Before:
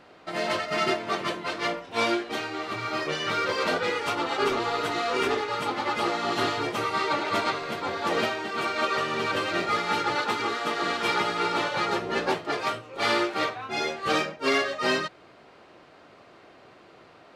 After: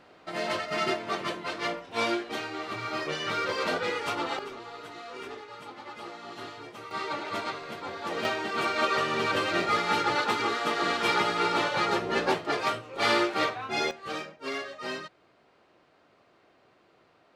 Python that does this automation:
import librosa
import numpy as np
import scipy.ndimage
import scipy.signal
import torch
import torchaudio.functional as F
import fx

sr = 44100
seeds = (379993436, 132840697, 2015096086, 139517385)

y = fx.gain(x, sr, db=fx.steps((0.0, -3.0), (4.39, -15.0), (6.91, -7.0), (8.25, 0.0), (13.91, -10.5)))